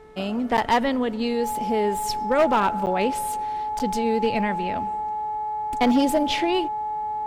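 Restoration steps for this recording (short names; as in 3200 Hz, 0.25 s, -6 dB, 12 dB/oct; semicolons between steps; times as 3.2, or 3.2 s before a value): clip repair -13.5 dBFS; de-hum 433.3 Hz, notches 5; notch 850 Hz, Q 30; interpolate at 0.57/2.86/3.79, 9.2 ms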